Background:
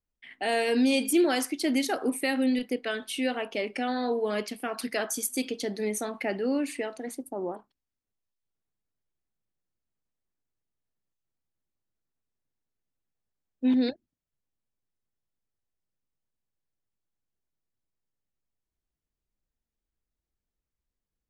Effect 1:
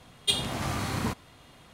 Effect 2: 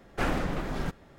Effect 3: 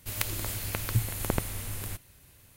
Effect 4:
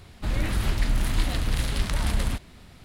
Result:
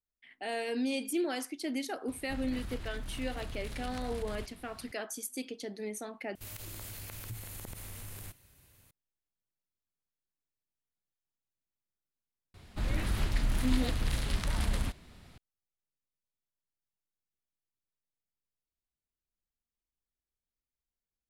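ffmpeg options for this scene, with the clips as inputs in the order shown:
-filter_complex "[4:a]asplit=2[s0][s1];[0:a]volume=0.355[s2];[s0]acompressor=threshold=0.0251:ratio=5:attack=2.8:release=109:knee=1:detection=peak[s3];[3:a]acompressor=threshold=0.02:ratio=3:attack=0.7:release=30:knee=1:detection=rms[s4];[s2]asplit=2[s5][s6];[s5]atrim=end=6.354[s7];[s4]atrim=end=2.56,asetpts=PTS-STARTPTS,volume=0.501[s8];[s6]atrim=start=8.906[s9];[s3]atrim=end=2.84,asetpts=PTS-STARTPTS,volume=0.501,afade=t=in:d=0.004:c=hsin,afade=t=out:st=2.836:d=0.004:c=hsin,adelay=2080[s10];[s1]atrim=end=2.84,asetpts=PTS-STARTPTS,volume=0.501,afade=t=in:d=0.004:c=hsin,afade=t=out:st=2.836:d=0.004:c=hsin,adelay=12540[s11];[s7][s8]acrossfade=d=0.004:c1=hsin:c2=hsin[s12];[s12][s9]acrossfade=d=0.004:c1=hsin:c2=hsin[s13];[s13][s10][s11]amix=inputs=3:normalize=0"

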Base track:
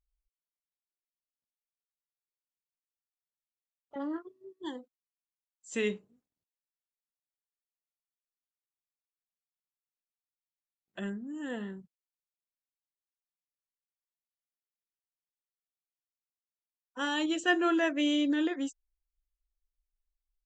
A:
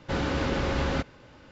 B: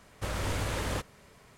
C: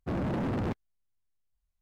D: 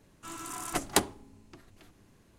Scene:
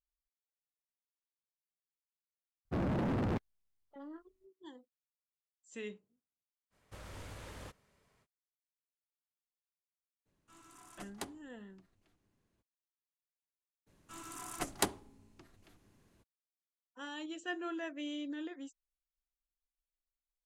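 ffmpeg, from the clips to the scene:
-filter_complex "[4:a]asplit=2[s0][s1];[0:a]volume=0.224[s2];[s0]highshelf=f=12000:g=-7.5[s3];[3:a]atrim=end=1.81,asetpts=PTS-STARTPTS,volume=0.75,afade=t=in:d=0.004:c=hsin,afade=t=out:st=1.806:d=0.004:c=hsin,adelay=2650[s4];[2:a]atrim=end=1.57,asetpts=PTS-STARTPTS,volume=0.15,afade=t=in:d=0.05,afade=t=out:st=1.52:d=0.05,adelay=6700[s5];[s3]atrim=end=2.38,asetpts=PTS-STARTPTS,volume=0.126,afade=t=in:d=0.02,afade=t=out:st=2.36:d=0.02,adelay=10250[s6];[s1]atrim=end=2.38,asetpts=PTS-STARTPTS,volume=0.447,afade=t=in:d=0.02,afade=t=out:st=2.36:d=0.02,adelay=13860[s7];[s2][s4][s5][s6][s7]amix=inputs=5:normalize=0"

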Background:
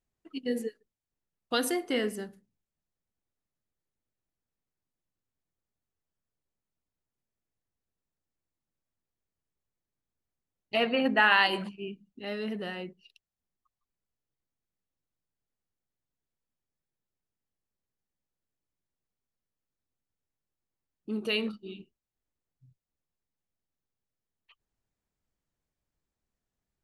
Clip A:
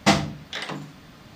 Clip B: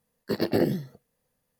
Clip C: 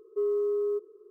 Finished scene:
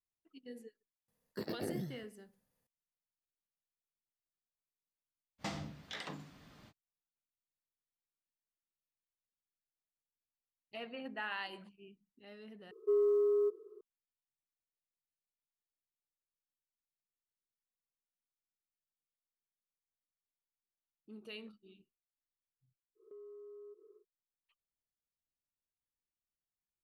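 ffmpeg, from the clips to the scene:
-filter_complex "[3:a]asplit=2[s0][s1];[0:a]volume=0.119[s2];[2:a]alimiter=limit=0.0708:level=0:latency=1:release=164[s3];[1:a]acompressor=threshold=0.0562:ratio=4:attack=4.9:release=114:knee=1:detection=rms[s4];[s1]acompressor=threshold=0.00631:ratio=6:attack=3.2:release=140:knee=1:detection=peak[s5];[s2]asplit=2[s6][s7];[s6]atrim=end=12.714[s8];[s0]atrim=end=1.1,asetpts=PTS-STARTPTS,volume=0.794[s9];[s7]atrim=start=13.806[s10];[s3]atrim=end=1.59,asetpts=PTS-STARTPTS,volume=0.447,afade=t=in:d=0.004:c=hsin,afade=t=out:st=1.586:d=0.004:c=hsin,adelay=1080[s11];[s4]atrim=end=1.35,asetpts=PTS-STARTPTS,volume=0.237,afade=t=in:d=0.05,afade=t=out:st=1.3:d=0.05,adelay=5380[s12];[s5]atrim=end=1.1,asetpts=PTS-STARTPTS,volume=0.376,afade=t=in:d=0.1,afade=t=out:st=1:d=0.1,adelay=22950[s13];[s8][s9]acrossfade=d=0.004:c1=hsin:c2=hsin[s14];[s14][s10]acrossfade=d=0.004:c1=hsin:c2=hsin[s15];[s15][s11][s12][s13]amix=inputs=4:normalize=0"

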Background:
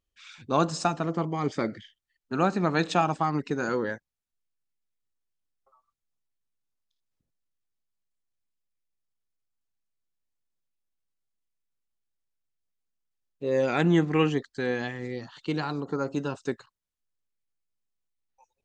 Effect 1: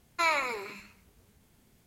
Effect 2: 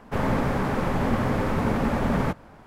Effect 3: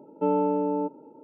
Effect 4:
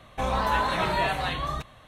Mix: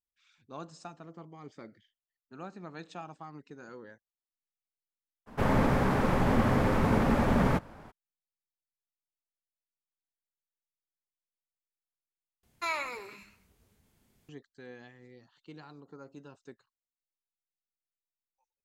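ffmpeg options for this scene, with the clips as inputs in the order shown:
-filter_complex "[0:a]volume=0.106,asplit=2[s0][s1];[s0]atrim=end=12.434[s2];[1:a]atrim=end=1.86,asetpts=PTS-STARTPTS,volume=0.501[s3];[s1]atrim=start=14.286[s4];[2:a]atrim=end=2.66,asetpts=PTS-STARTPTS,volume=0.841,afade=t=in:d=0.02,afade=t=out:st=2.64:d=0.02,adelay=5260[s5];[s2][s3]acrossfade=d=0.004:c1=hsin:c2=hsin[s6];[s6][s4]acrossfade=d=0.004:c1=hsin:c2=hsin[s7];[s7][s5]amix=inputs=2:normalize=0"

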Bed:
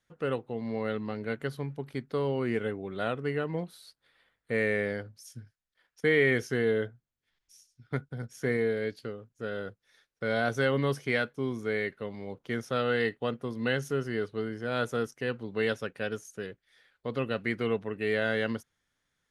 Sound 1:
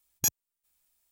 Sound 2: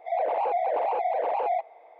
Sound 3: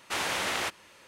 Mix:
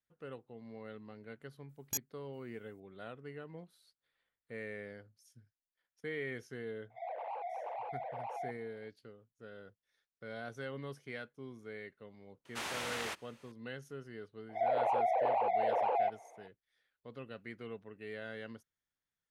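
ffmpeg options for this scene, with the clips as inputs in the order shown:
-filter_complex "[2:a]asplit=2[s0][s1];[0:a]volume=0.158[s2];[s0]highpass=660[s3];[1:a]atrim=end=1.11,asetpts=PTS-STARTPTS,volume=0.299,afade=t=in:d=0.004:c=hsin,afade=t=out:st=1.106:d=0.004:c=hsin,adelay=1690[s4];[s3]atrim=end=1.99,asetpts=PTS-STARTPTS,volume=0.224,afade=t=in:d=0.004:c=hsin,afade=t=out:st=1.986:d=0.004:c=hsin,adelay=304290S[s5];[3:a]atrim=end=1.07,asetpts=PTS-STARTPTS,volume=0.335,afade=t=in:d=0.004:c=hsin,afade=t=out:st=1.066:d=0.004:c=hsin,adelay=12450[s6];[s1]atrim=end=1.99,asetpts=PTS-STARTPTS,volume=0.562,afade=t=in:d=0.004:c=hsin,afade=t=out:st=1.986:d=0.004:c=hsin,adelay=14490[s7];[s2][s4][s5][s6][s7]amix=inputs=5:normalize=0"

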